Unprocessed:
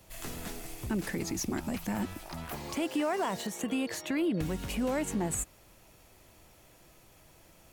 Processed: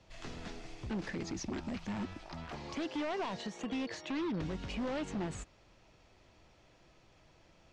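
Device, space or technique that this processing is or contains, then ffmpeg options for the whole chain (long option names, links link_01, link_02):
synthesiser wavefolder: -af "aeval=exprs='0.0447*(abs(mod(val(0)/0.0447+3,4)-2)-1)':channel_layout=same,lowpass=frequency=5600:width=0.5412,lowpass=frequency=5600:width=1.3066,volume=-4dB"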